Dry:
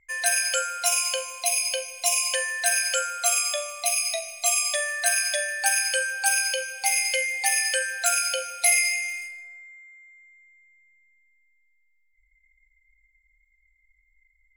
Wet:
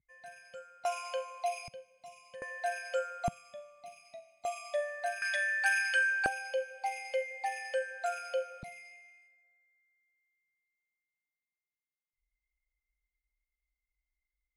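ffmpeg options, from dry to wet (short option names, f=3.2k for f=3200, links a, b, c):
-af "asetnsamples=n=441:p=0,asendcmd='0.85 bandpass f 740;1.68 bandpass f 140;2.42 bandpass f 580;3.28 bandpass f 170;4.45 bandpass f 540;5.22 bandpass f 1500;6.26 bandpass f 570;8.63 bandpass f 160',bandpass=f=140:t=q:w=1.7:csg=0"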